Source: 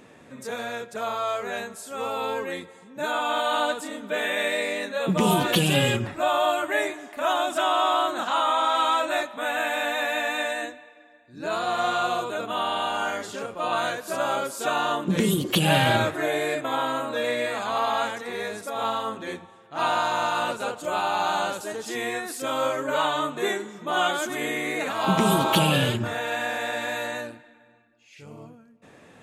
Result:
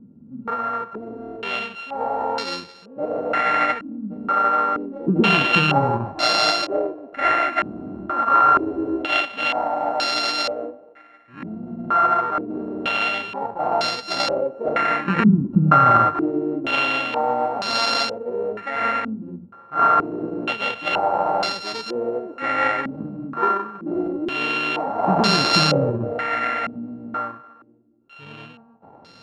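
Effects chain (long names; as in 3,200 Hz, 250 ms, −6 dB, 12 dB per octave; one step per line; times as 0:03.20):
samples sorted by size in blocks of 32 samples
low-pass on a step sequencer 2.1 Hz 220–4,700 Hz
level +1.5 dB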